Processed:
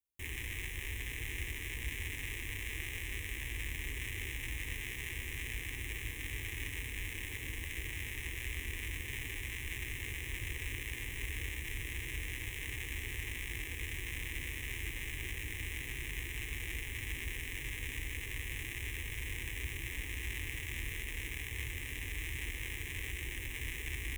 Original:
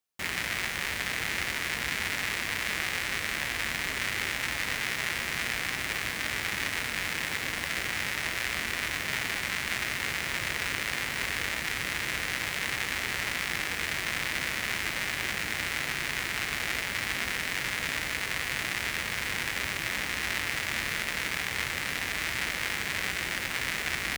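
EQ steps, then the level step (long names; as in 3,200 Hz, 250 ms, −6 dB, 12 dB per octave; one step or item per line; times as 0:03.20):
guitar amp tone stack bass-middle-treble 10-0-1
phaser with its sweep stopped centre 940 Hz, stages 8
+15.0 dB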